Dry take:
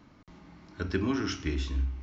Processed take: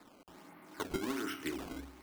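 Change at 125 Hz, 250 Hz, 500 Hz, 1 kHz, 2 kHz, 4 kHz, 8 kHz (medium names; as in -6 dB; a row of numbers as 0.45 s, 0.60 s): -19.0 dB, -7.5 dB, -5.0 dB, -2.0 dB, -5.0 dB, -6.0 dB, no reading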